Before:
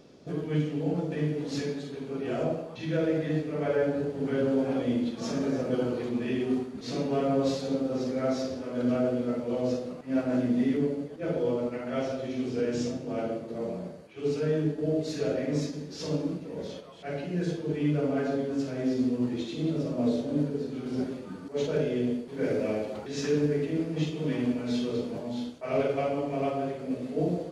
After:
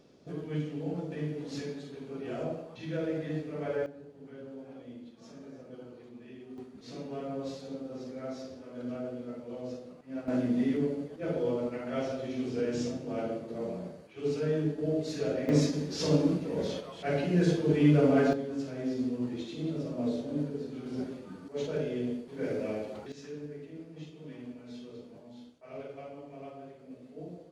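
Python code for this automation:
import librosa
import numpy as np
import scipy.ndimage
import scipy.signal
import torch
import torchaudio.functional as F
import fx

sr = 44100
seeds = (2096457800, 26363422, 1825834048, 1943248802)

y = fx.gain(x, sr, db=fx.steps((0.0, -6.0), (3.86, -19.0), (6.58, -11.0), (10.28, -2.5), (15.49, 4.5), (18.33, -5.0), (23.12, -16.0)))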